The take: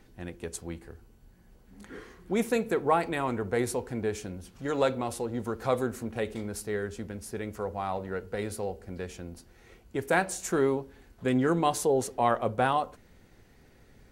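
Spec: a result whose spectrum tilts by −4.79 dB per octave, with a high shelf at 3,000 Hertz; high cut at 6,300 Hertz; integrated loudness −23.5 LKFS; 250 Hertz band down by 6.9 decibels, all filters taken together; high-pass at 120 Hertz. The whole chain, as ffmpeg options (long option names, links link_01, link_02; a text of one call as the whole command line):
ffmpeg -i in.wav -af "highpass=120,lowpass=6300,equalizer=frequency=250:width_type=o:gain=-8.5,highshelf=frequency=3000:gain=-9,volume=9.5dB" out.wav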